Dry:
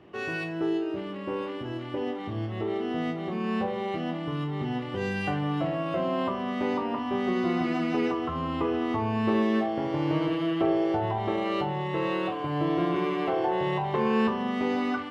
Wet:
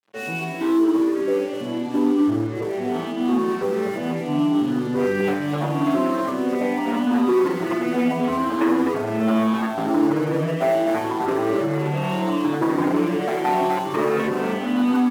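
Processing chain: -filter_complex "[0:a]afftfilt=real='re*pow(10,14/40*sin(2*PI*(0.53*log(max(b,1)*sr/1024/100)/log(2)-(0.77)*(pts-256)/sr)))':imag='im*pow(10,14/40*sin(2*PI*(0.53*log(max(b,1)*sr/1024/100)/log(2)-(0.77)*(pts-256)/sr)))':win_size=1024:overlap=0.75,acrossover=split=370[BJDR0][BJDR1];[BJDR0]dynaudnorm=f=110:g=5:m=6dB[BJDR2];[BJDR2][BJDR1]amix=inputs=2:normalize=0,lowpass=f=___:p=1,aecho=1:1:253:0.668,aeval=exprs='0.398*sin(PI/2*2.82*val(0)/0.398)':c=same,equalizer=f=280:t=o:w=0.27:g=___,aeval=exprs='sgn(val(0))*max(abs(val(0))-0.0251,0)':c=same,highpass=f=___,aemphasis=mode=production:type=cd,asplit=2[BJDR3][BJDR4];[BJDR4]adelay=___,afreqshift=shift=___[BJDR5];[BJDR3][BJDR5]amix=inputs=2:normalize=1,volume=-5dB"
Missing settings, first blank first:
1.5k, 6.5, 200, 7.1, 1.3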